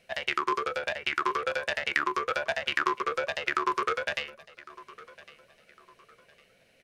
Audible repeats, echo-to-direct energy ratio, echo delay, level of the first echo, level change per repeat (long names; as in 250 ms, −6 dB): 2, −19.5 dB, 1,106 ms, −20.0 dB, −9.5 dB